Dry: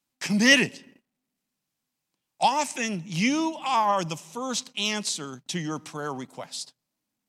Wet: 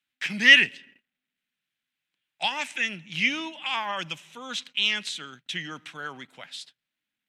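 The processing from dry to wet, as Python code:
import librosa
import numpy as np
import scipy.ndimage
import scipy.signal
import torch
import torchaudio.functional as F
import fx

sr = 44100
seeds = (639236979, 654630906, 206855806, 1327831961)

y = fx.band_shelf(x, sr, hz=2300.0, db=15.0, octaves=1.7)
y = y * librosa.db_to_amplitude(-10.0)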